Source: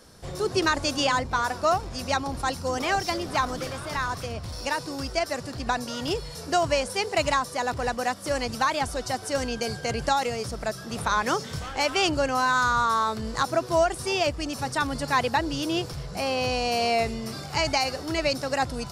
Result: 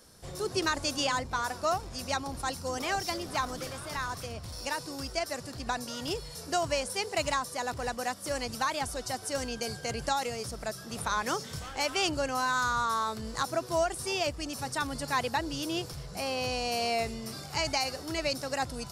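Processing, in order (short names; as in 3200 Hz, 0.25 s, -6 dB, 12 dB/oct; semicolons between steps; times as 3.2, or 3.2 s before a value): high shelf 6400 Hz +8.5 dB; gain -6.5 dB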